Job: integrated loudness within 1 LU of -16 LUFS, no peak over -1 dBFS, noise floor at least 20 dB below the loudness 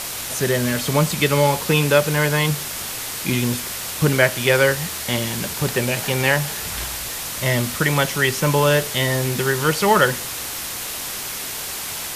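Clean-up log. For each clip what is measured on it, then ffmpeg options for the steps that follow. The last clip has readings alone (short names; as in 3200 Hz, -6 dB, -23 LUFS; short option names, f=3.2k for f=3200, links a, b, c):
noise floor -29 dBFS; noise floor target -40 dBFS; loudness -20.0 LUFS; peak -1.5 dBFS; loudness target -16.0 LUFS
-> -af "afftdn=nr=11:nf=-29"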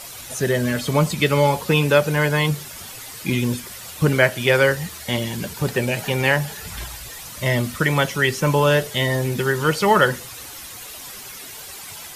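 noise floor -37 dBFS; noise floor target -40 dBFS
-> -af "afftdn=nr=6:nf=-37"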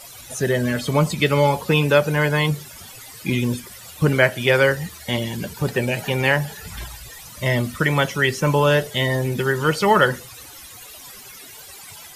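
noise floor -41 dBFS; loudness -20.0 LUFS; peak -2.0 dBFS; loudness target -16.0 LUFS
-> -af "volume=4dB,alimiter=limit=-1dB:level=0:latency=1"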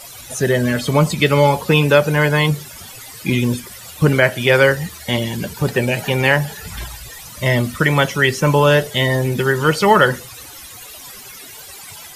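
loudness -16.5 LUFS; peak -1.0 dBFS; noise floor -37 dBFS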